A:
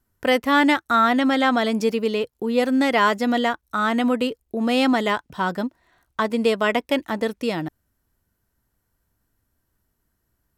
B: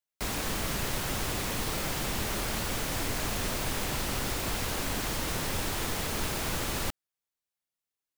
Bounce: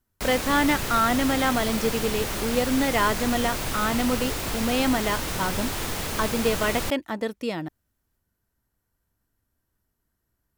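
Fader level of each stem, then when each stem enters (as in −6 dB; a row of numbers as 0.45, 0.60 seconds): −4.5, +2.5 decibels; 0.00, 0.00 seconds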